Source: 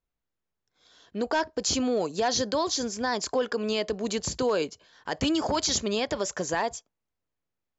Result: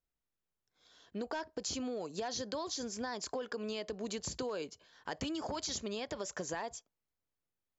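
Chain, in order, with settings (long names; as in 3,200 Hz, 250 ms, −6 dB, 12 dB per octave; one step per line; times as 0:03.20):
downward compressor, threshold −30 dBFS, peak gain reduction 8.5 dB
level −5.5 dB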